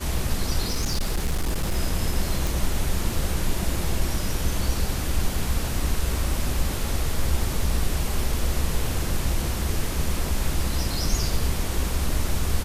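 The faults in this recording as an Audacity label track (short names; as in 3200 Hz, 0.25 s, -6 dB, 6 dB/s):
0.690000	1.770000	clipped -19.5 dBFS
2.470000	2.470000	pop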